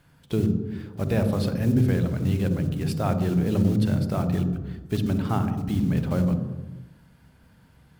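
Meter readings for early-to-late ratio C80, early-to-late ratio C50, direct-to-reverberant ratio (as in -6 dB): 10.5 dB, 9.0 dB, 8.5 dB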